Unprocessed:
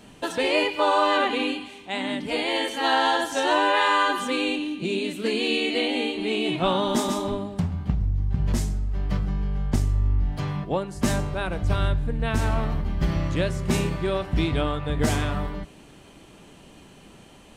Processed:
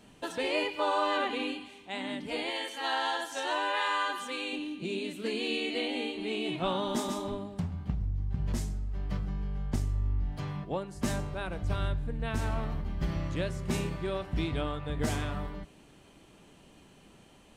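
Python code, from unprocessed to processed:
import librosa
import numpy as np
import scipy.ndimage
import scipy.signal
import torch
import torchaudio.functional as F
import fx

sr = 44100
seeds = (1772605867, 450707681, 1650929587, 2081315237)

y = fx.low_shelf(x, sr, hz=380.0, db=-11.5, at=(2.5, 4.53))
y = y * librosa.db_to_amplitude(-8.0)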